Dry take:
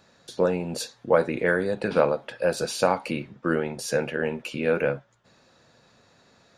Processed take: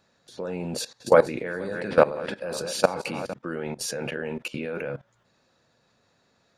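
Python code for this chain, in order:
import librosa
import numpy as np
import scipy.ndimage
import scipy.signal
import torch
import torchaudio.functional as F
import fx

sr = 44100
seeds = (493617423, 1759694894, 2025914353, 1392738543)

y = fx.reverse_delay_fb(x, sr, ms=233, feedback_pct=46, wet_db=-8.5, at=(0.71, 3.34))
y = fx.level_steps(y, sr, step_db=18)
y = y * librosa.db_to_amplitude(5.0)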